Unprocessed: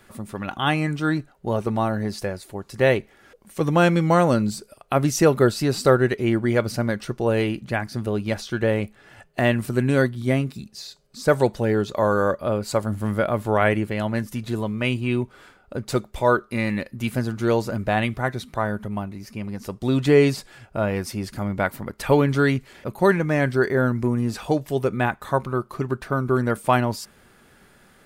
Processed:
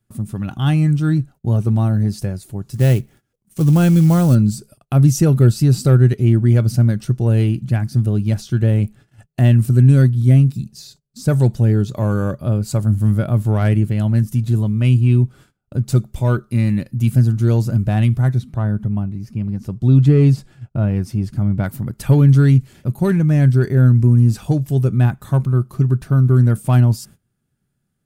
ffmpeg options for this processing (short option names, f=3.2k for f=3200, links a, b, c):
-filter_complex "[0:a]asettb=1/sr,asplit=3[a][b][c];[a]atrim=end=2.704[d];[b]atrim=start=2.7:end=4.35,asetpts=PTS-STARTPTS,afade=t=in:d=0.004:c=qsin,afade=t=out:st=1.646:d=0.004:c=qsin,acrusher=bits=4:mode=log:mix=0:aa=0.000001[e];[c]atrim=start=4.346[f];[d][e]acrossfade=d=0.004:c1=hsin:c2=qsin[g];[g][f]acrossfade=d=0.004:c1=qsin:c2=hsin,asettb=1/sr,asplit=3[h][i][j];[h]atrim=end=18.384[k];[i]atrim=start=18.38:end=21.64,asetpts=PTS-STARTPTS,afade=t=in:d=0.004:c=qsin,afade=t=out:st=3.256:d=0.004:c=qsin,highshelf=f=4.7k:g=-12[l];[j]atrim=start=21.636[m];[k][l]acrossfade=d=0.004:c1=hsin:c2=qsin[n];[n][m]acrossfade=d=0.004:c1=qsin:c2=hsin,acontrast=43,agate=range=-23dB:threshold=-40dB:ratio=16:detection=peak,equalizer=f=125:t=o:w=1:g=12,equalizer=f=500:t=o:w=1:g=-8,equalizer=f=1k:t=o:w=1:g=-8,equalizer=f=2k:t=o:w=1:g=-9,equalizer=f=4k:t=o:w=1:g=-5,volume=-1.5dB"